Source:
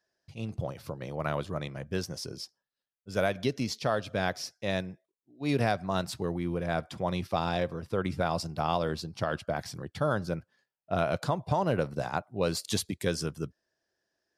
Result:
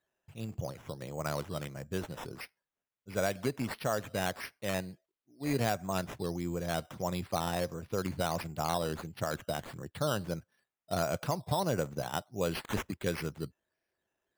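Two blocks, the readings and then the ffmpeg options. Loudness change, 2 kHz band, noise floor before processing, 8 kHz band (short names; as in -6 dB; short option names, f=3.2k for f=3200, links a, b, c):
-3.5 dB, -3.5 dB, under -85 dBFS, -1.0 dB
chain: -af "acrusher=samples=8:mix=1:aa=0.000001:lfo=1:lforange=4.8:lforate=1.5,volume=-3.5dB"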